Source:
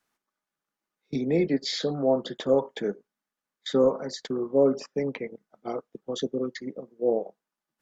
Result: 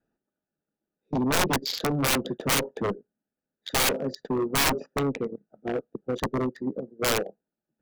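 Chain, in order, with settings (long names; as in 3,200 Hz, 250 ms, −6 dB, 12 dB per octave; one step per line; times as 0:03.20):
adaptive Wiener filter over 41 samples
harmonic generator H 7 −11 dB, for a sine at −10 dBFS
wrap-around overflow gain 23.5 dB
level +8.5 dB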